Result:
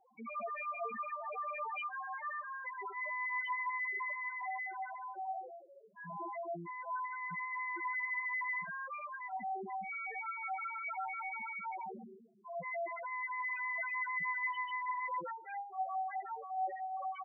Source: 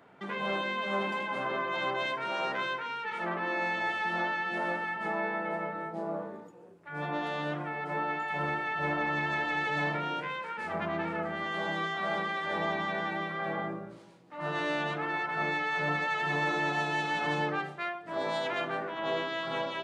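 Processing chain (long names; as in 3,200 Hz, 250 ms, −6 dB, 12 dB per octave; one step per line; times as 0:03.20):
Chebyshev low-pass with heavy ripple 2,700 Hz, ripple 3 dB
on a send: single-tap delay 222 ms −15 dB
on the sum: spectral peaks only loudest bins 2
change of speed 1.15×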